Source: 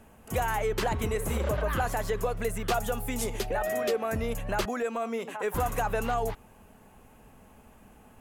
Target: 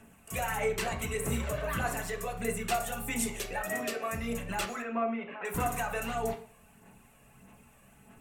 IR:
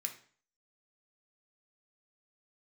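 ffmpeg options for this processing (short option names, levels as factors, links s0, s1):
-filter_complex "[0:a]aphaser=in_gain=1:out_gain=1:delay=1.8:decay=0.48:speed=1.6:type=sinusoidal,asettb=1/sr,asplit=3[s0][s1][s2];[s0]atrim=end=4.824[s3];[s1]atrim=start=4.82:end=5.45,asetpts=PTS-STARTPTS,afade=t=in:d=0.004:c=qsin,afade=t=out:st=0.626:d=0.004:c=qsin,lowpass=f=2600:w=0.5412,lowpass=f=2600:w=1.3066[s4];[s2]atrim=start=5.446[s5];[s3][s4]acrossfade=d=0.004:c1=hsin:c2=qsin[s6];[s6][s5]acrossfade=d=0.004:c1=qsin:c2=hsin[s7];[1:a]atrim=start_sample=2205,asetrate=48510,aresample=44100[s8];[s7][s8]afir=irnorm=-1:irlink=0"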